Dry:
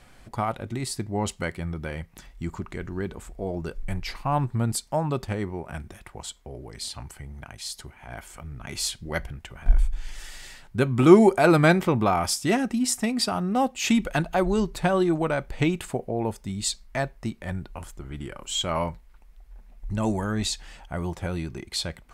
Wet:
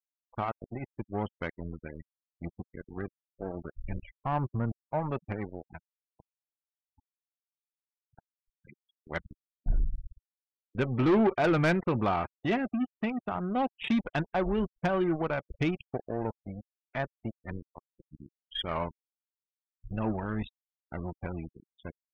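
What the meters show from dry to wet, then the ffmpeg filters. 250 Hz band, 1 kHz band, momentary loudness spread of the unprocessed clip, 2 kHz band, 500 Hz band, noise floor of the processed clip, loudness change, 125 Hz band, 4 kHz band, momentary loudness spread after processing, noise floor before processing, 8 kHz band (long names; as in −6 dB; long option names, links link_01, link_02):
−7.0 dB, −6.0 dB, 17 LU, −6.5 dB, −7.5 dB, below −85 dBFS, −6.5 dB, −7.0 dB, −12.0 dB, 17 LU, −53 dBFS, below −30 dB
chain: -af "aresample=8000,aeval=exprs='sgn(val(0))*max(abs(val(0))-0.0237,0)':channel_layout=same,aresample=44100,afftfilt=real='re*gte(hypot(re,im),0.0178)':imag='im*gte(hypot(re,im),0.0178)':win_size=1024:overlap=0.75,asoftclip=type=tanh:threshold=-18dB,volume=-1.5dB"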